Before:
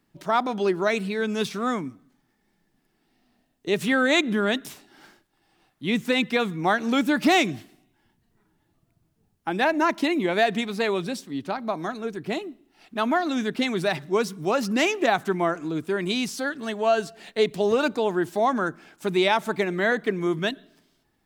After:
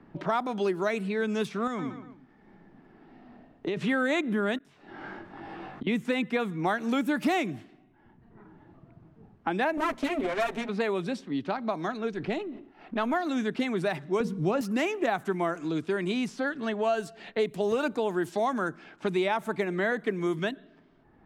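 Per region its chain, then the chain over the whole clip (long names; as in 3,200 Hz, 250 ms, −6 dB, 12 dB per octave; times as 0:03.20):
0:01.67–0:03.77: repeating echo 117 ms, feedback 35%, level −13 dB + downward compressor 4 to 1, threshold −27 dBFS
0:04.58–0:05.87: double-tracking delay 21 ms −2 dB + gate with flip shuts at −34 dBFS, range −26 dB + envelope flattener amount 50%
0:09.77–0:10.69: lower of the sound and its delayed copy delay 7.6 ms + mains-hum notches 60/120/180/240/300 Hz
0:12.13–0:13.14: gain on one half-wave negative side −3 dB + level that may fall only so fast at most 120 dB per second
0:14.20–0:14.61: RIAA equalisation playback + hum removal 234.1 Hz, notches 4
whole clip: low-pass that shuts in the quiet parts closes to 1,400 Hz, open at −20 dBFS; dynamic equaliser 4,700 Hz, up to −7 dB, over −44 dBFS, Q 1; multiband upward and downward compressor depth 70%; level −4.5 dB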